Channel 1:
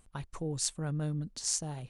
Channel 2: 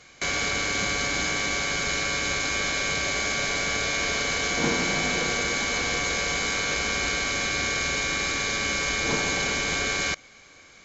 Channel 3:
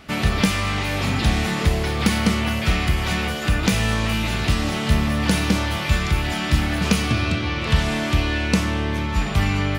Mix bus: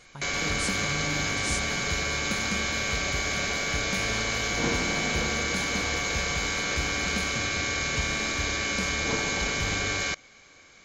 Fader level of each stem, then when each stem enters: -3.0 dB, -2.5 dB, -15.0 dB; 0.00 s, 0.00 s, 0.25 s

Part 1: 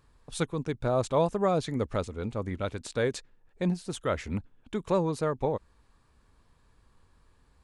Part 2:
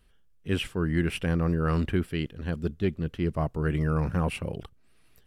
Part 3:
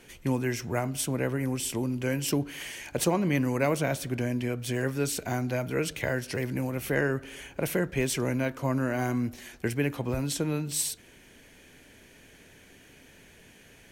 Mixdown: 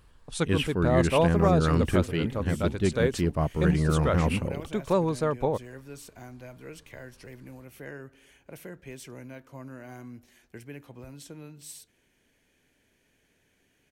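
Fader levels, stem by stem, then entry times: +2.0 dB, +1.5 dB, -15.0 dB; 0.00 s, 0.00 s, 0.90 s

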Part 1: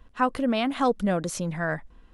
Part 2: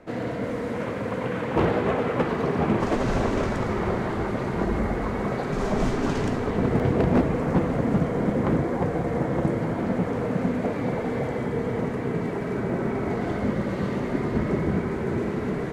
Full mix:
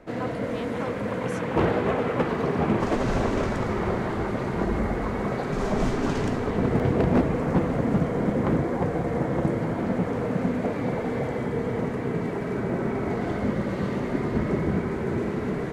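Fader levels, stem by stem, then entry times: -13.0 dB, -0.5 dB; 0.00 s, 0.00 s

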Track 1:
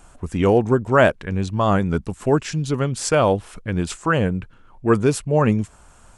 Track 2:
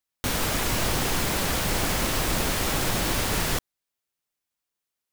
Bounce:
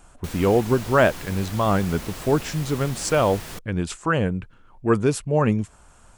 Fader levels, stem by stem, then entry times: -2.5 dB, -11.5 dB; 0.00 s, 0.00 s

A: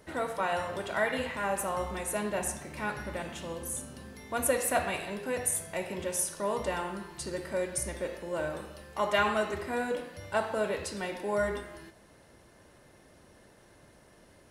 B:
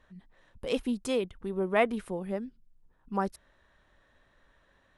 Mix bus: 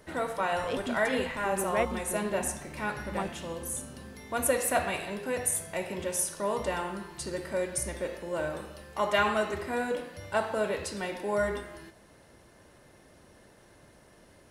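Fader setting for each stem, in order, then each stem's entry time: +1.0 dB, -4.5 dB; 0.00 s, 0.00 s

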